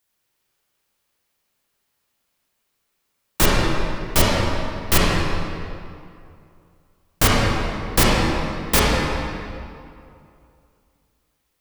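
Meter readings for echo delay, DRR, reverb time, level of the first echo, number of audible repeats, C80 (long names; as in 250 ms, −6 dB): no echo audible, −5.5 dB, 2.5 s, no echo audible, no echo audible, −1.5 dB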